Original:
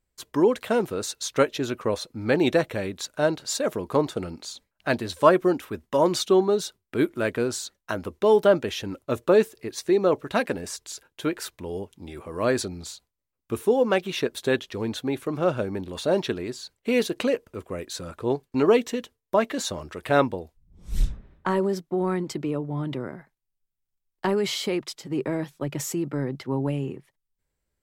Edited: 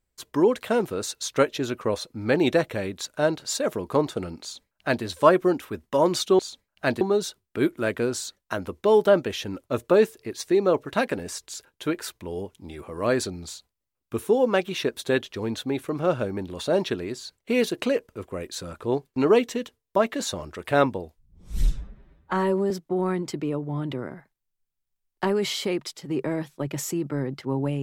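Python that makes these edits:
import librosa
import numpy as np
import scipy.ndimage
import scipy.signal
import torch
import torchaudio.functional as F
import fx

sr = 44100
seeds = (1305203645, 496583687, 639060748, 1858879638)

y = fx.edit(x, sr, fx.duplicate(start_s=4.42, length_s=0.62, to_s=6.39),
    fx.stretch_span(start_s=20.99, length_s=0.73, factor=1.5), tone=tone)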